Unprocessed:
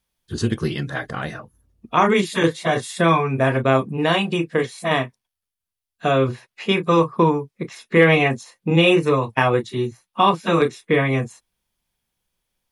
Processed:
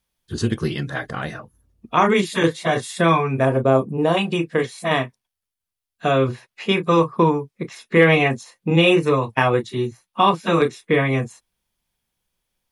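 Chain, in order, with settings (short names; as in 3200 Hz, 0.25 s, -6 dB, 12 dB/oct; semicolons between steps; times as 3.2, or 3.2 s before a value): 3.45–4.17 graphic EQ 500/2000/4000 Hz +4/-11/-7 dB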